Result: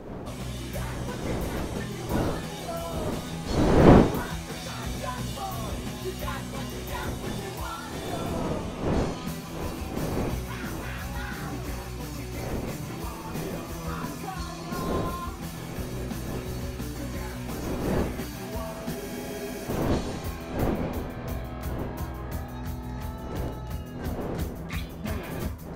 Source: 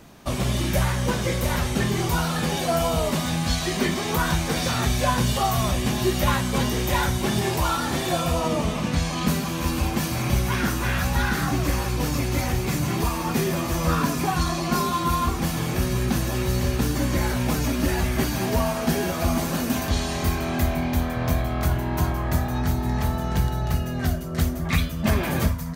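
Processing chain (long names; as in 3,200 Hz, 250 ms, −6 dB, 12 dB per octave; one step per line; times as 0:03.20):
wind on the microphone 430 Hz −20 dBFS
frozen spectrum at 0:18.96, 0.72 s
level −11 dB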